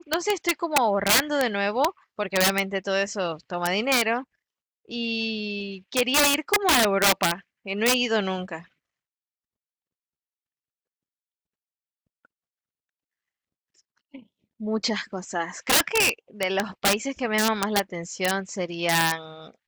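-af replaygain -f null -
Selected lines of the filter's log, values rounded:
track_gain = +3.4 dB
track_peak = 0.189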